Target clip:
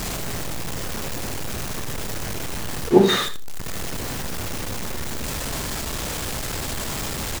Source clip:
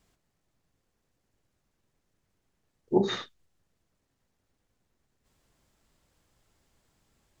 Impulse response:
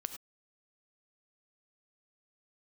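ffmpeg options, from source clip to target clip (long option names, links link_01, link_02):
-filter_complex "[0:a]aeval=exprs='val(0)+0.5*0.0282*sgn(val(0))':channel_layout=same,asplit=2[link_01][link_02];[link_02]adelay=28,volume=-14dB[link_03];[link_01][link_03]amix=inputs=2:normalize=0,aecho=1:1:81:0.2,asplit=2[link_04][link_05];[1:a]atrim=start_sample=2205,asetrate=61740,aresample=44100[link_06];[link_05][link_06]afir=irnorm=-1:irlink=0,volume=5.5dB[link_07];[link_04][link_07]amix=inputs=2:normalize=0,volume=2.5dB"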